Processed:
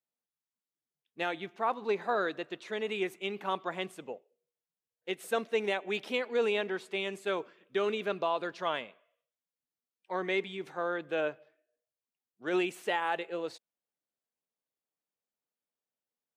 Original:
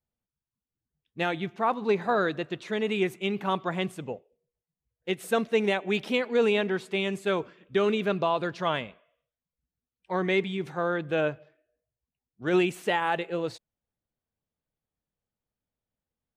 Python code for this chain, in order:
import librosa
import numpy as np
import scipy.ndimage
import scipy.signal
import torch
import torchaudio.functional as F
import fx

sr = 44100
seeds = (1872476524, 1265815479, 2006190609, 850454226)

y = scipy.signal.sosfilt(scipy.signal.butter(2, 310.0, 'highpass', fs=sr, output='sos'), x)
y = y * 10.0 ** (-4.5 / 20.0)